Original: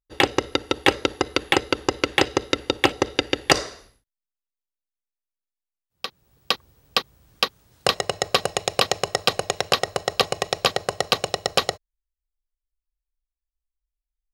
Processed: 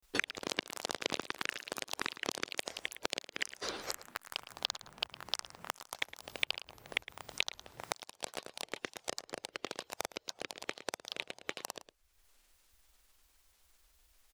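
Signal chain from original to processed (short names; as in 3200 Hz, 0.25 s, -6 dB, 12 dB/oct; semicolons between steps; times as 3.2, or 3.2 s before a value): low shelf 250 Hz -7.5 dB; flipped gate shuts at -12 dBFS, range -41 dB; grains, pitch spread up and down by 7 st; echoes that change speed 0.101 s, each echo +6 st, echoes 3, each echo -6 dB; outdoor echo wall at 19 m, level -15 dB; three-band squash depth 100%; gain -1.5 dB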